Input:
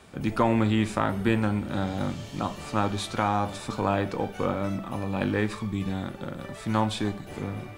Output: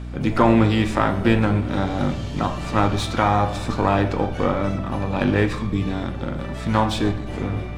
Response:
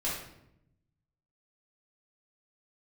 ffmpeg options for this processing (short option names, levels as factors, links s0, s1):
-filter_complex "[0:a]asplit=2[s0][s1];[1:a]atrim=start_sample=2205[s2];[s1][s2]afir=irnorm=-1:irlink=0,volume=0.237[s3];[s0][s3]amix=inputs=2:normalize=0,adynamicsmooth=sensitivity=5.5:basefreq=7200,asplit=2[s4][s5];[s5]asetrate=66075,aresample=44100,atempo=0.66742,volume=0.2[s6];[s4][s6]amix=inputs=2:normalize=0,aeval=exprs='val(0)+0.0178*(sin(2*PI*60*n/s)+sin(2*PI*2*60*n/s)/2+sin(2*PI*3*60*n/s)/3+sin(2*PI*4*60*n/s)/4+sin(2*PI*5*60*n/s)/5)':c=same,volume=1.68"